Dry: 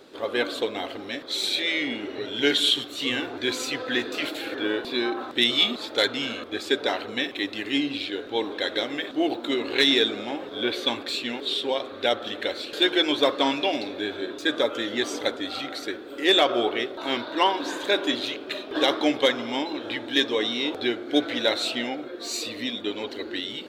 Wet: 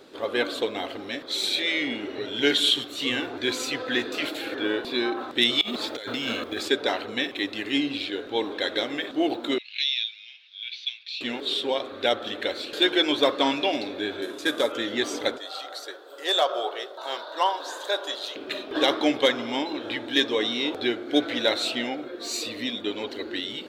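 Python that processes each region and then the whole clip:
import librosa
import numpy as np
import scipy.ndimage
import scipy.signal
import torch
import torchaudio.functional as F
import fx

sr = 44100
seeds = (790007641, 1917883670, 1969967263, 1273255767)

y = fx.chain(x, sr, fx.quant_float(bits=4),
    fx.over_compress(threshold_db=-31.0, ratio=-1.0), at=(5.61, 6.68))
y = fx.chain(y, sr, fx.cheby1_bandpass(low_hz=2400.0, high_hz=5800.0, order=3),
    fx.high_shelf(hz=4200.0, db=-9.5), at=(9.58, 11.21))
y = fx.chain(y, sr, fx.cvsd(bps=64000),
    fx.low_shelf(hz=130.0, db=-7.5), at=(14.22, 14.72))
y = fx.chain(y, sr, fx.highpass(hz=510.0, slope=24),
    fx.peak_eq(hz=2300.0, db=-12.5, octaves=0.73), at=(15.38, 18.36))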